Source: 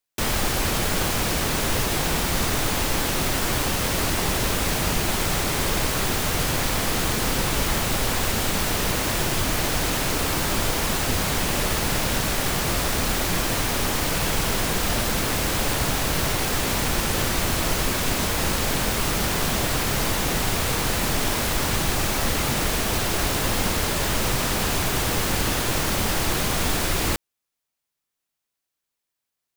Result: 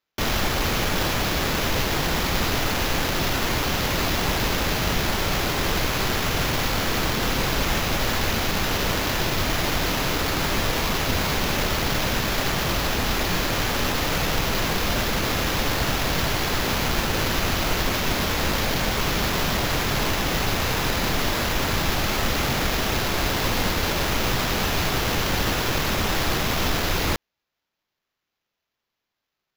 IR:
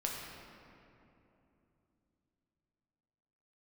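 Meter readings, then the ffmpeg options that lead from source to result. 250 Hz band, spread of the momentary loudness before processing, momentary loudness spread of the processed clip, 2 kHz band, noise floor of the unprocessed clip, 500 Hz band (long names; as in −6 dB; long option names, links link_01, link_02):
+0.5 dB, 0 LU, 0 LU, +1.5 dB, −83 dBFS, +0.5 dB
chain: -af "acrusher=samples=5:mix=1:aa=0.000001"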